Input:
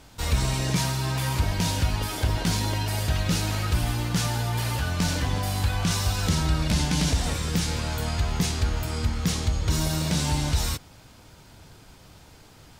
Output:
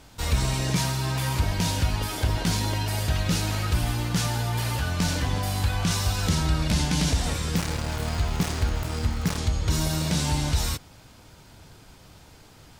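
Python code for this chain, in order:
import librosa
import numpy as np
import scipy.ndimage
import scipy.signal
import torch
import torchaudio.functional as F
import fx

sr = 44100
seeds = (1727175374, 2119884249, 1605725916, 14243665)

y = fx.dead_time(x, sr, dead_ms=0.23, at=(7.57, 9.38))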